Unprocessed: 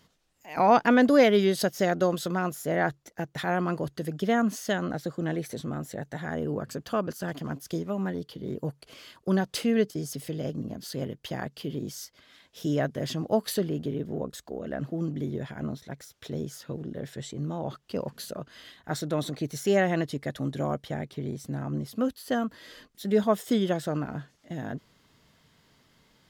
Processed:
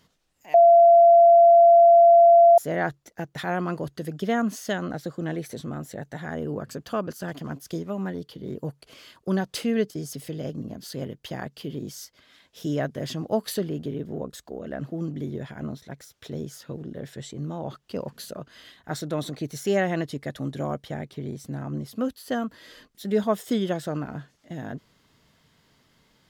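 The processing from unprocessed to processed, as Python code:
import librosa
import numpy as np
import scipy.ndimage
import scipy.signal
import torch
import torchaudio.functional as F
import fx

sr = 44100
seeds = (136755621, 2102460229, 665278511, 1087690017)

y = fx.edit(x, sr, fx.bleep(start_s=0.54, length_s=2.04, hz=683.0, db=-10.0), tone=tone)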